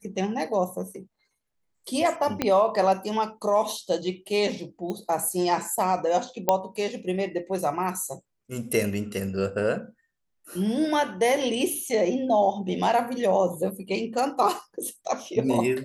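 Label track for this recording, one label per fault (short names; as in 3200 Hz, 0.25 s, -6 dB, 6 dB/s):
2.420000	2.420000	pop -9 dBFS
4.900000	4.900000	pop -19 dBFS
6.490000	6.490000	pop -6 dBFS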